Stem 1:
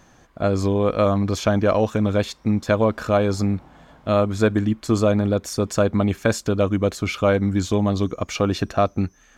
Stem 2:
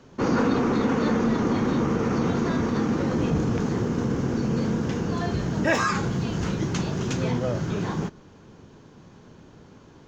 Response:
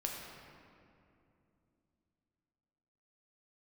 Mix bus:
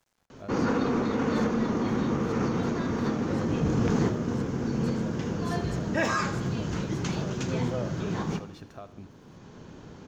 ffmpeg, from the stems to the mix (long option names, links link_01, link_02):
-filter_complex "[0:a]acompressor=threshold=-24dB:ratio=4,bandreject=frequency=60:width_type=h:width=6,bandreject=frequency=120:width_type=h:width=6,bandreject=frequency=180:width_type=h:width=6,bandreject=frequency=240:width_type=h:width=6,bandreject=frequency=300:width_type=h:width=6,aeval=exprs='val(0)*gte(abs(val(0)),0.00422)':channel_layout=same,volume=-17dB,asplit=3[link_01][link_02][link_03];[link_02]volume=-17.5dB[link_04];[1:a]adelay=300,volume=3dB,asplit=2[link_05][link_06];[link_06]volume=-20dB[link_07];[link_03]apad=whole_len=457717[link_08];[link_05][link_08]sidechaincompress=threshold=-46dB:ratio=8:attack=26:release=1130[link_09];[link_04][link_07]amix=inputs=2:normalize=0,aecho=0:1:80|160|240|320|400|480|560|640:1|0.54|0.292|0.157|0.085|0.0459|0.0248|0.0134[link_10];[link_01][link_09][link_10]amix=inputs=3:normalize=0"